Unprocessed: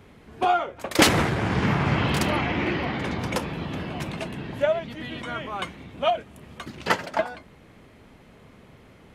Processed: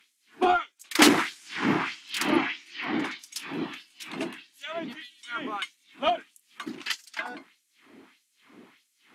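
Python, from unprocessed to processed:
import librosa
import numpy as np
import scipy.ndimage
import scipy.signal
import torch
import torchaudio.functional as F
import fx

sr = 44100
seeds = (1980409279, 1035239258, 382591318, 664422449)

y = fx.filter_lfo_highpass(x, sr, shape='sine', hz=1.6, low_hz=490.0, high_hz=7500.0, q=1.3)
y = fx.cheby_harmonics(y, sr, harmonics=(7,), levels_db=(-35,), full_scale_db=-3.0)
y = fx.low_shelf_res(y, sr, hz=400.0, db=10.5, q=3.0)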